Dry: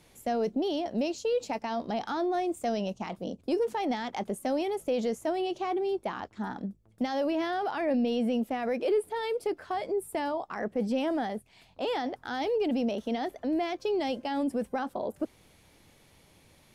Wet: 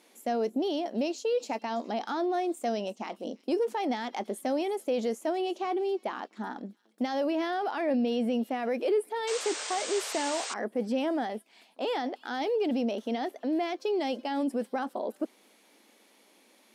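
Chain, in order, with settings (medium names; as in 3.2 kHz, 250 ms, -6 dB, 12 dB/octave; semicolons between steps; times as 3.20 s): brick-wall FIR high-pass 200 Hz; feedback echo behind a high-pass 331 ms, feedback 32%, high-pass 3.7 kHz, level -17 dB; painted sound noise, 9.27–10.54 s, 400–8900 Hz -37 dBFS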